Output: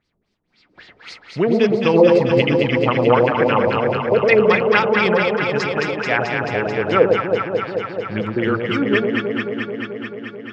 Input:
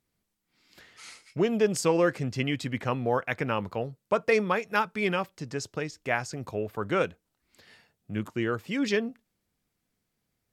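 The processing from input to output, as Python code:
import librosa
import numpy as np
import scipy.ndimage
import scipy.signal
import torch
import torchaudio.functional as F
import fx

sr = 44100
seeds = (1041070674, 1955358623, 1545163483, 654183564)

y = fx.filter_lfo_lowpass(x, sr, shape='sine', hz=3.8, low_hz=410.0, high_hz=4900.0, q=3.0)
y = fx.echo_alternate(y, sr, ms=109, hz=820.0, feedback_pct=88, wet_db=-2.5)
y = y * 10.0 ** (6.0 / 20.0)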